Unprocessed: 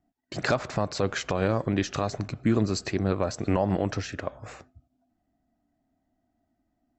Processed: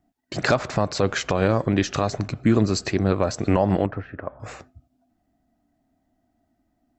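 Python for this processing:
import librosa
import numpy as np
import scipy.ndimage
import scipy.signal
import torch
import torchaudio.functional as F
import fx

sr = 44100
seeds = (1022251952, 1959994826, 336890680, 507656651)

y = fx.ladder_lowpass(x, sr, hz=2000.0, resonance_pct=20, at=(3.86, 4.4))
y = y * librosa.db_to_amplitude(5.0)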